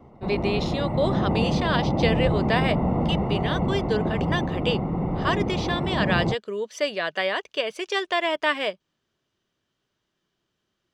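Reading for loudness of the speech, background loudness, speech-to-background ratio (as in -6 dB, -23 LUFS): -27.0 LUFS, -25.5 LUFS, -1.5 dB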